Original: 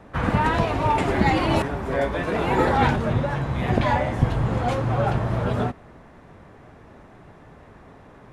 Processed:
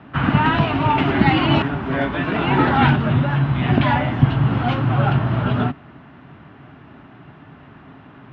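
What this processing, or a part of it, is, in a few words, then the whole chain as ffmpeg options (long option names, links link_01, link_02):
guitar cabinet: -af "highpass=81,equalizer=frequency=140:width_type=q:width=4:gain=8,equalizer=frequency=270:width_type=q:width=4:gain=7,equalizer=frequency=500:width_type=q:width=4:gain=-10,equalizer=frequency=1400:width_type=q:width=4:gain=5,equalizer=frequency=2900:width_type=q:width=4:gain=8,lowpass=frequency=4000:width=0.5412,lowpass=frequency=4000:width=1.3066,volume=2.5dB"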